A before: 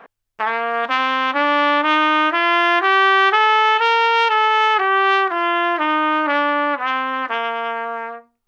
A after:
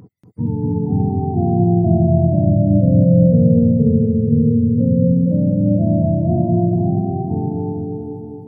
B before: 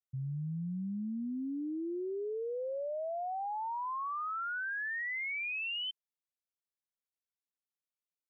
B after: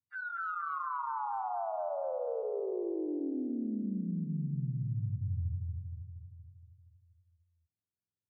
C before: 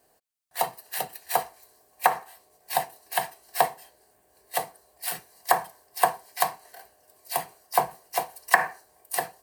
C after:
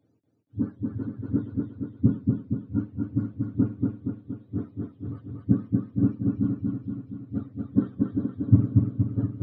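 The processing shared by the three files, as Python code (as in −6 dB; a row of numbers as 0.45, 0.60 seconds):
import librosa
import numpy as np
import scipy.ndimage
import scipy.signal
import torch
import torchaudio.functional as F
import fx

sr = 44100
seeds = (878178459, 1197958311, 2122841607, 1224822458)

y = fx.octave_mirror(x, sr, pivot_hz=450.0)
y = fx.echo_feedback(y, sr, ms=235, feedback_pct=59, wet_db=-3.0)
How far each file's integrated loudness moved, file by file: +0.5, +0.5, +0.5 LU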